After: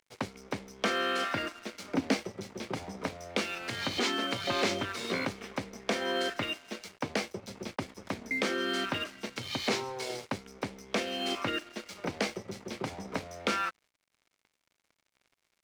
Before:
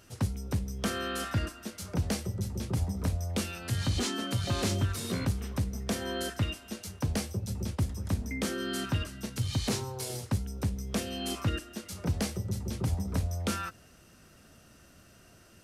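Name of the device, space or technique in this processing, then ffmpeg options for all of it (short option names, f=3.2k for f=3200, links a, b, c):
pocket radio on a weak battery: -filter_complex "[0:a]highpass=350,lowpass=4.3k,aeval=exprs='sgn(val(0))*max(abs(val(0))-0.00178,0)':c=same,equalizer=f=2.2k:t=o:w=0.2:g=7,asettb=1/sr,asplit=3[a][b][c];[a]atrim=end=1.744[d];[b]atrim=start=1.74:end=2.14,asetpts=PTS-STARTPTS,afade=t=in:d=0.004:c=qsin,afade=t=out:st=0.396:d=0.004:c=qsin,equalizer=f=270:t=o:w=0.36:g=13.5[e];[c]atrim=start=2.136[f];[d][e]acrossfade=d=0.004:c1=hsin:c2=qsin[g];[g][f]acrossfade=d=0.004:c1=qsin:c2=hsin,volume=6dB"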